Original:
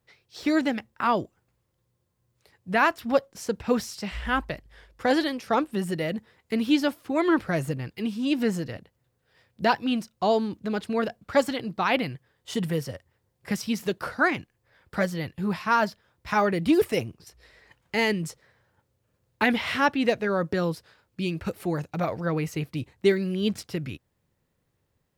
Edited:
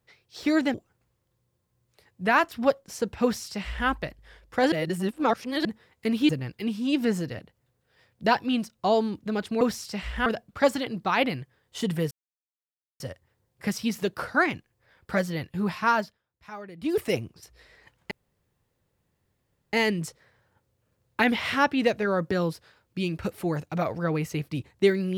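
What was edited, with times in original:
0.74–1.21 s: delete
3.70–4.35 s: copy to 10.99 s
5.19–6.12 s: reverse
6.76–7.67 s: delete
12.84 s: insert silence 0.89 s
15.73–16.95 s: dip -17.5 dB, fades 0.34 s
17.95 s: insert room tone 1.62 s

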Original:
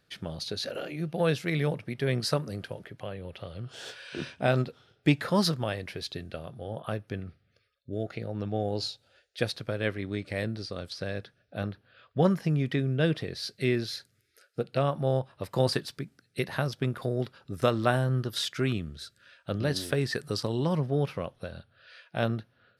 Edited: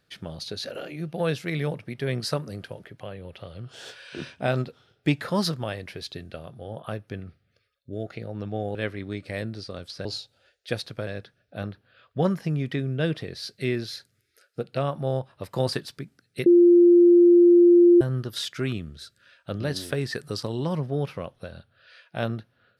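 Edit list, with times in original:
8.75–9.77 s: move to 11.07 s
16.46–18.01 s: bleep 348 Hz -11 dBFS

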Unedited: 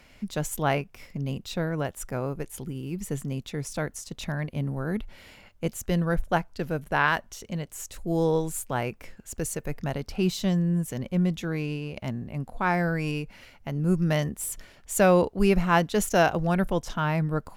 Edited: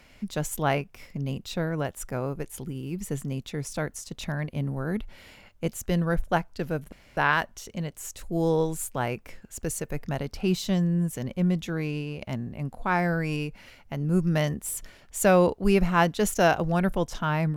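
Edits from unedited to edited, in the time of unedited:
6.92 s: insert room tone 0.25 s

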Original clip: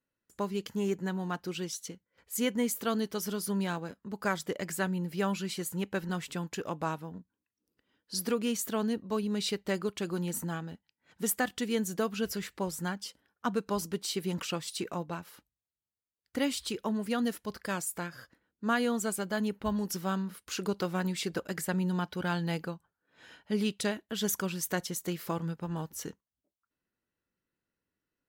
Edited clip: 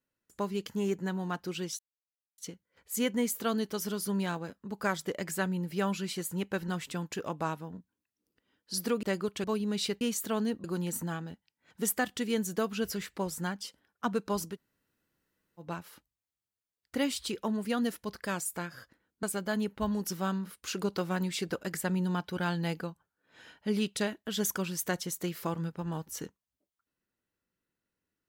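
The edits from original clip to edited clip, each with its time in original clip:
1.79 s: insert silence 0.59 s
8.44–9.07 s: swap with 9.64–10.05 s
13.94–15.03 s: room tone, crossfade 0.10 s
18.64–19.07 s: delete

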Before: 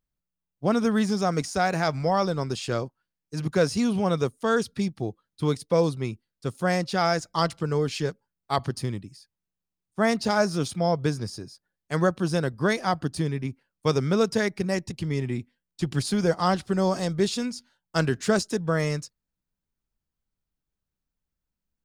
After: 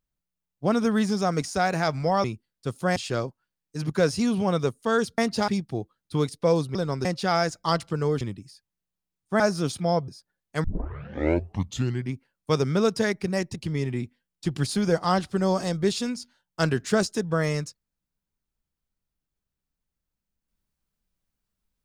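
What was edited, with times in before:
2.24–2.54 s: swap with 6.03–6.75 s
7.91–8.87 s: delete
10.06–10.36 s: move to 4.76 s
11.04–11.44 s: delete
12.00 s: tape start 1.50 s

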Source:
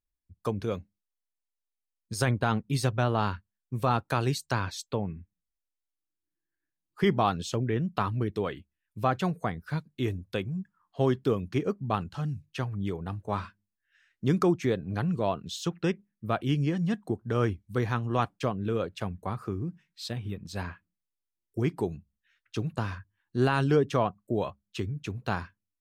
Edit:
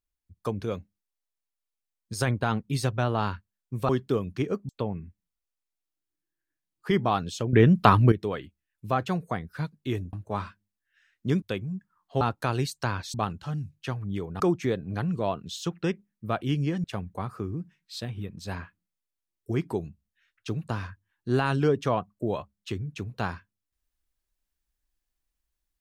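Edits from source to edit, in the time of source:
3.89–4.82 s: swap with 11.05–11.85 s
7.66–8.25 s: gain +11 dB
13.11–14.40 s: move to 10.26 s
16.84–18.92 s: delete

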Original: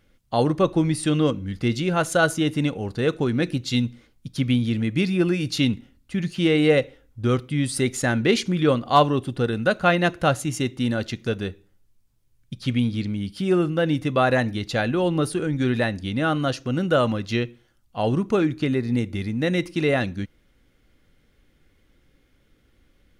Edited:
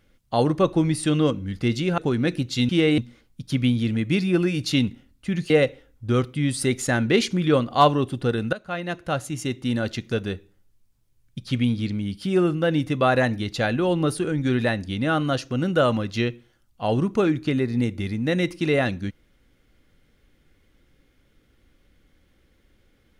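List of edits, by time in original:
1.98–3.13 s: delete
6.36–6.65 s: move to 3.84 s
9.68–11.02 s: fade in, from -17 dB

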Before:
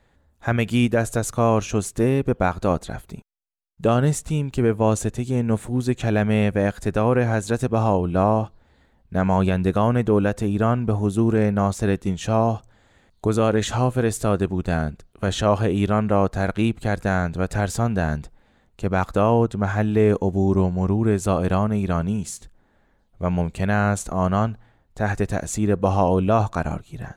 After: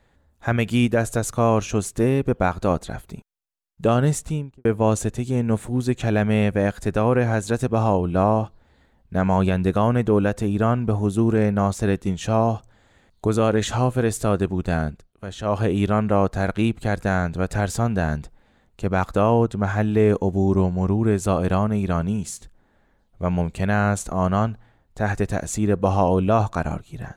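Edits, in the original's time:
4.21–4.65 s: studio fade out
14.88–15.63 s: dip -10.5 dB, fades 0.24 s

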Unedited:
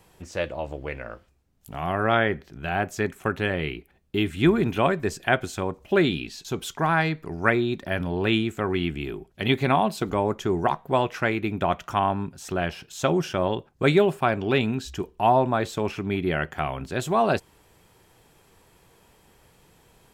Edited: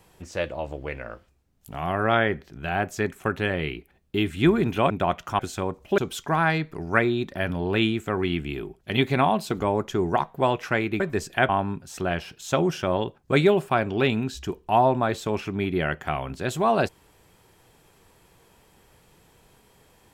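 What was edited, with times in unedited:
4.90–5.39 s: swap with 11.51–12.00 s
5.98–6.49 s: delete

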